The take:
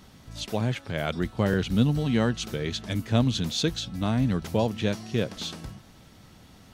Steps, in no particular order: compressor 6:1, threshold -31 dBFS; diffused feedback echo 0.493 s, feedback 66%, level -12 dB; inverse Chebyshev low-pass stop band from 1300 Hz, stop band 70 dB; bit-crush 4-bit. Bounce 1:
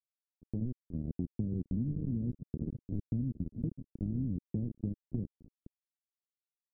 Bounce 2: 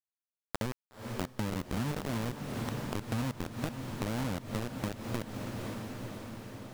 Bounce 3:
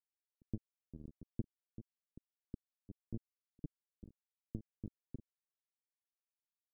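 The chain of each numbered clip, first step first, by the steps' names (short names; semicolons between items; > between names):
diffused feedback echo > bit-crush > inverse Chebyshev low-pass > compressor; inverse Chebyshev low-pass > bit-crush > diffused feedback echo > compressor; diffused feedback echo > compressor > bit-crush > inverse Chebyshev low-pass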